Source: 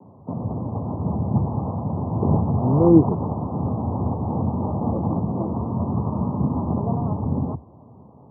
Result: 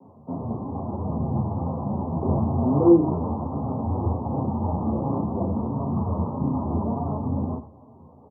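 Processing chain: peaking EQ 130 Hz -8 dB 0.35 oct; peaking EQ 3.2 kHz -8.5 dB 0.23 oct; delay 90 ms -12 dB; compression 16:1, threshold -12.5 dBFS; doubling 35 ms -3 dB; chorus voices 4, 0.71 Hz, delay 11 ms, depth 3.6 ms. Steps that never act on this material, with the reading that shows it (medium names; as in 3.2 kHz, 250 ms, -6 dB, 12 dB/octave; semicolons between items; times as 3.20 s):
peaking EQ 3.2 kHz: input has nothing above 1.2 kHz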